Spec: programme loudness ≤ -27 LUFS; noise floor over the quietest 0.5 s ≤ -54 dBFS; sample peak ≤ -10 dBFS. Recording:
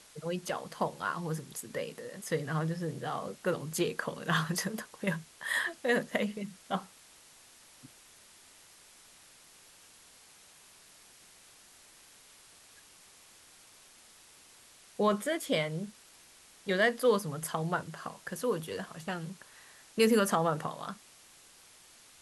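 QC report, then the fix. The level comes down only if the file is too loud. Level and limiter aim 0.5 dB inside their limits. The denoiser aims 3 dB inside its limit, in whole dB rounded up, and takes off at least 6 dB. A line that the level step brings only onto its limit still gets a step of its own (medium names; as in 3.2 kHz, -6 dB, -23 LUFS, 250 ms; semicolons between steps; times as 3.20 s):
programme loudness -33.0 LUFS: pass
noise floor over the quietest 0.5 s -58 dBFS: pass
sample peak -14.0 dBFS: pass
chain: none needed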